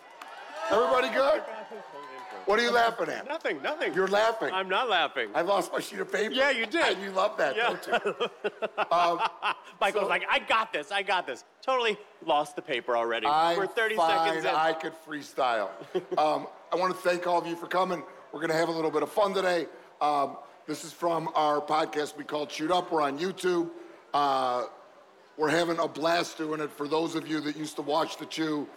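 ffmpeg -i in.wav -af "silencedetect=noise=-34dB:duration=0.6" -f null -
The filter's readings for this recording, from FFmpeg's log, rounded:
silence_start: 24.67
silence_end: 25.39 | silence_duration: 0.71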